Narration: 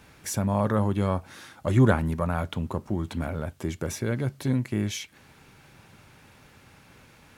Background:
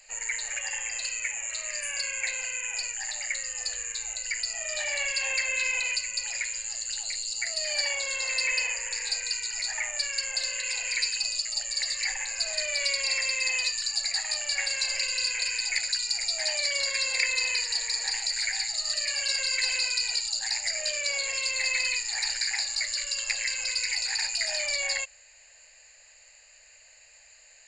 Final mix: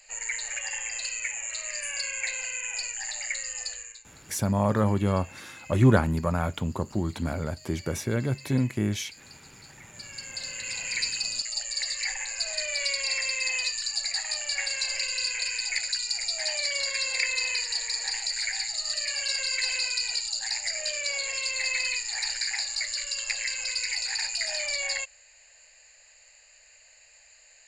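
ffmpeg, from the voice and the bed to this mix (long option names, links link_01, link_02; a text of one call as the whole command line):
ffmpeg -i stem1.wav -i stem2.wav -filter_complex "[0:a]adelay=4050,volume=0.5dB[link_01];[1:a]volume=19dB,afade=type=out:start_time=3.56:duration=0.47:silence=0.1,afade=type=in:start_time=9.86:duration=1.13:silence=0.105925[link_02];[link_01][link_02]amix=inputs=2:normalize=0" out.wav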